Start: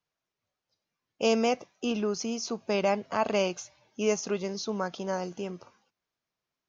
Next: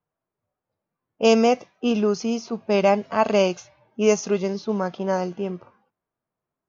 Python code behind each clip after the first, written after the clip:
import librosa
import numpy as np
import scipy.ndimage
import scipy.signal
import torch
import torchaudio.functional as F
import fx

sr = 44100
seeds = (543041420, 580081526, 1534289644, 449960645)

y = fx.hpss(x, sr, part='harmonic', gain_db=7)
y = fx.env_lowpass(y, sr, base_hz=1100.0, full_db=-17.0)
y = y * 10.0 ** (1.5 / 20.0)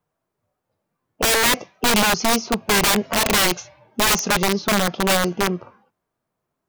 y = (np.mod(10.0 ** (19.0 / 20.0) * x + 1.0, 2.0) - 1.0) / 10.0 ** (19.0 / 20.0)
y = y * 10.0 ** (7.0 / 20.0)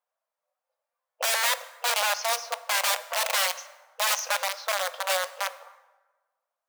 y = fx.brickwall_highpass(x, sr, low_hz=480.0)
y = fx.rev_plate(y, sr, seeds[0], rt60_s=1.3, hf_ratio=0.6, predelay_ms=0, drr_db=13.5)
y = y * 10.0 ** (-7.0 / 20.0)